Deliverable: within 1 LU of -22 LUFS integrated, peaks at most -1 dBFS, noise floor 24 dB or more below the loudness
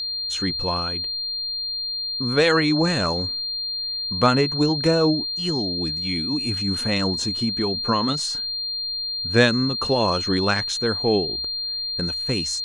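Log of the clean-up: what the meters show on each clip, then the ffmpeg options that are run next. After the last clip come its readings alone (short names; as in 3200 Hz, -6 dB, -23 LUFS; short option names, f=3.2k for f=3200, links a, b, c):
steady tone 4200 Hz; tone level -25 dBFS; loudness -22.0 LUFS; peak -3.0 dBFS; loudness target -22.0 LUFS
-> -af "bandreject=f=4.2k:w=30"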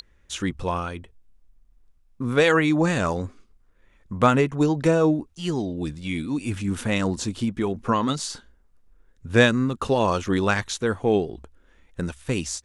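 steady tone none; loudness -23.5 LUFS; peak -3.5 dBFS; loudness target -22.0 LUFS
-> -af "volume=1.5dB"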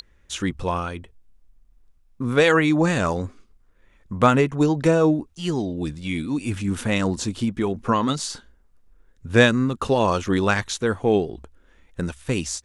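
loudness -22.0 LUFS; peak -2.0 dBFS; noise floor -58 dBFS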